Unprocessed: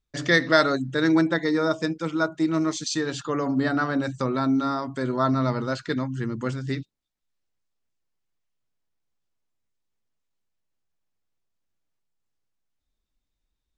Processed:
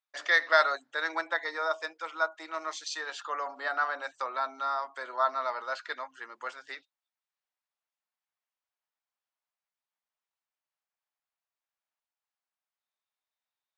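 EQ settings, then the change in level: HPF 710 Hz 24 dB/oct; LPF 2200 Hz 6 dB/oct; 0.0 dB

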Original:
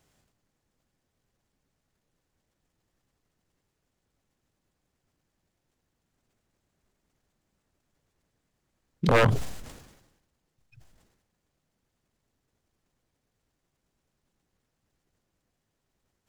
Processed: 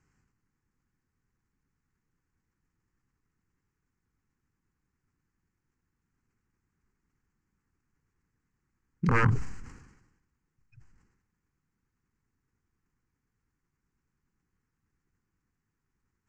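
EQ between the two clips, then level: air absorption 180 m; bell 7400 Hz +11 dB 0.97 oct; fixed phaser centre 1500 Hz, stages 4; 0.0 dB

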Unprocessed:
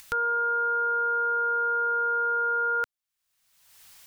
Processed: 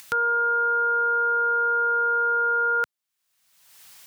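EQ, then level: HPF 110 Hz; +3.5 dB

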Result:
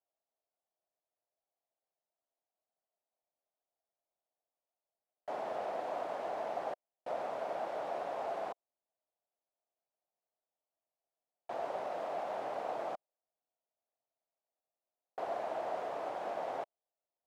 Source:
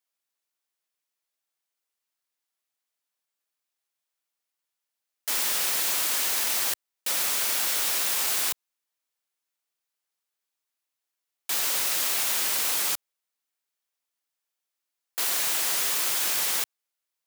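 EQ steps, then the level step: band-pass 670 Hz, Q 4.4; tilt -4.5 dB/oct; +7.0 dB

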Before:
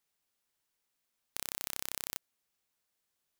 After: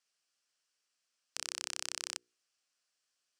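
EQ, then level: speaker cabinet 130–6900 Hz, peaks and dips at 190 Hz -7 dB, 400 Hz -4 dB, 890 Hz -9 dB, 2100 Hz -6 dB, 3700 Hz -8 dB, 6700 Hz -5 dB; tilt +3 dB/oct; notches 60/120/180/240/300/360/420/480 Hz; +1.5 dB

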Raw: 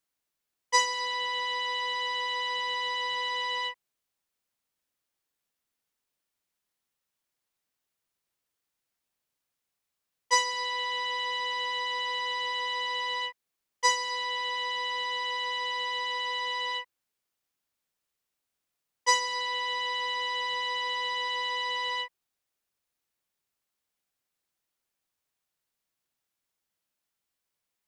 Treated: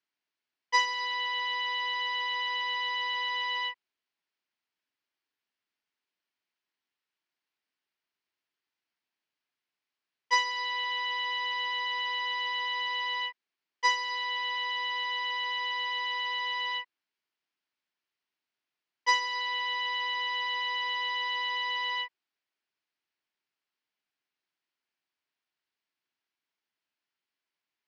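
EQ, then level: speaker cabinet 150–4600 Hz, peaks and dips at 150 Hz -4 dB, 210 Hz -3 dB, 520 Hz -10 dB, 770 Hz -4 dB, 1200 Hz -4 dB, 3700 Hz -4 dB; low shelf 230 Hz -6.5 dB; +1.5 dB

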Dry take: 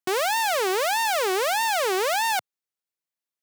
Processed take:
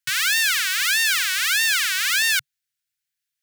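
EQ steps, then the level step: Chebyshev band-stop 140–1500 Hz, order 4; +8.5 dB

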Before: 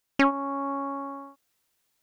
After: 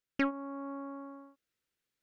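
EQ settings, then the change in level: band shelf 840 Hz -8.5 dB 1 oct; high shelf 5000 Hz -11 dB; -7.5 dB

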